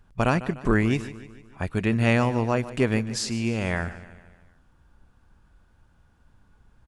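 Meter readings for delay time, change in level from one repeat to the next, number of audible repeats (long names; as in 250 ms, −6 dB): 149 ms, −5.5 dB, 4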